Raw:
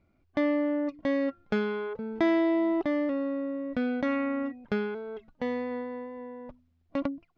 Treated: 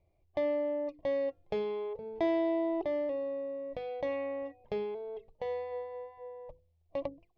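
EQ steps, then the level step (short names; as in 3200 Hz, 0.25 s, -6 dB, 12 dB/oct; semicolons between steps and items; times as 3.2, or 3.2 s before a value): LPF 2600 Hz 6 dB/oct; notches 50/100/150/200/250/300/350/400/450/500 Hz; fixed phaser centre 590 Hz, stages 4; 0.0 dB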